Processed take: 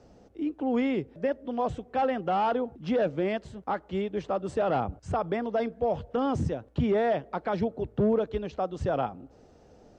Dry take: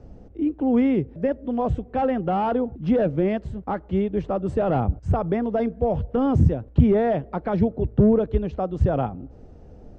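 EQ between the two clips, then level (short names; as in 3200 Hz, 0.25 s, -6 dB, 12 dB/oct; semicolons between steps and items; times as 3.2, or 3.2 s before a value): air absorption 60 m; tilt +4 dB/oct; bell 2300 Hz -3.5 dB 1.4 oct; 0.0 dB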